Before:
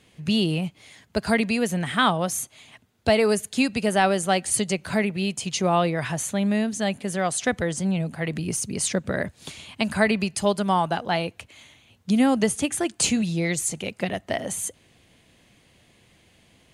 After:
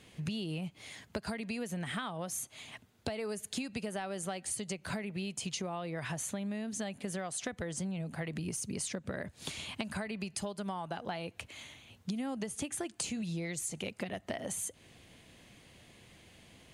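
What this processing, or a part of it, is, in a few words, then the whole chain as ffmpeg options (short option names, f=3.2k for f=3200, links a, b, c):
serial compression, leveller first: -af "acompressor=threshold=-24dB:ratio=3,acompressor=threshold=-35dB:ratio=6"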